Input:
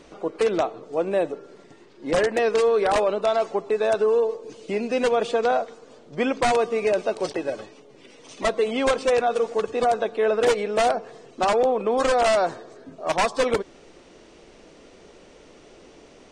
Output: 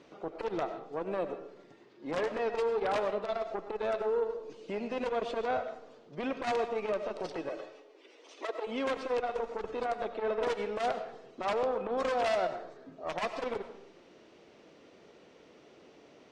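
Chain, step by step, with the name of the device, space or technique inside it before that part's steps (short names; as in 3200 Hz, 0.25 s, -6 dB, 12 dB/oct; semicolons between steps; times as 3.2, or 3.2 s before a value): valve radio (BPF 100–4900 Hz; tube stage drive 16 dB, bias 0.4; core saturation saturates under 500 Hz); 7.49–8.67 steep high-pass 300 Hz 48 dB/oct; digital reverb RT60 0.59 s, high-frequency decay 0.7×, pre-delay 55 ms, DRR 9.5 dB; gain -6.5 dB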